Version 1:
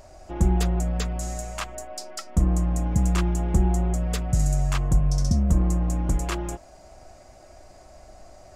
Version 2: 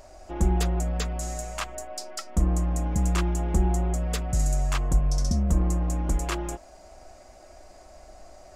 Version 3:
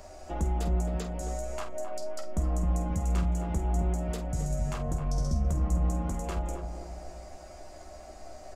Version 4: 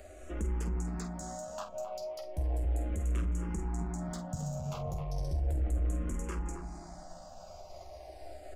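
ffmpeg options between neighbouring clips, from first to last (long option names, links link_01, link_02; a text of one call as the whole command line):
ffmpeg -i in.wav -af "equalizer=frequency=120:width_type=o:width=1:gain=-9" out.wav
ffmpeg -i in.wav -filter_complex "[0:a]asplit=2[link_01][link_02];[link_02]aecho=0:1:13|47:0.596|0.335[link_03];[link_01][link_03]amix=inputs=2:normalize=0,acrossover=split=93|900[link_04][link_05][link_06];[link_04]acompressor=threshold=-29dB:ratio=4[link_07];[link_05]acompressor=threshold=-34dB:ratio=4[link_08];[link_06]acompressor=threshold=-46dB:ratio=4[link_09];[link_07][link_08][link_09]amix=inputs=3:normalize=0,asplit=2[link_10][link_11];[link_11]adelay=265,lowpass=frequency=960:poles=1,volume=-5dB,asplit=2[link_12][link_13];[link_13]adelay=265,lowpass=frequency=960:poles=1,volume=0.5,asplit=2[link_14][link_15];[link_15]adelay=265,lowpass=frequency=960:poles=1,volume=0.5,asplit=2[link_16][link_17];[link_17]adelay=265,lowpass=frequency=960:poles=1,volume=0.5,asplit=2[link_18][link_19];[link_19]adelay=265,lowpass=frequency=960:poles=1,volume=0.5,asplit=2[link_20][link_21];[link_21]adelay=265,lowpass=frequency=960:poles=1,volume=0.5[link_22];[link_12][link_14][link_16][link_18][link_20][link_22]amix=inputs=6:normalize=0[link_23];[link_10][link_23]amix=inputs=2:normalize=0" out.wav
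ffmpeg -i in.wav -filter_complex "[0:a]asoftclip=type=tanh:threshold=-24.5dB,aeval=exprs='0.0596*(cos(1*acos(clip(val(0)/0.0596,-1,1)))-cos(1*PI/2))+0.00168*(cos(8*acos(clip(val(0)/0.0596,-1,1)))-cos(8*PI/2))':channel_layout=same,asplit=2[link_01][link_02];[link_02]afreqshift=-0.35[link_03];[link_01][link_03]amix=inputs=2:normalize=1" out.wav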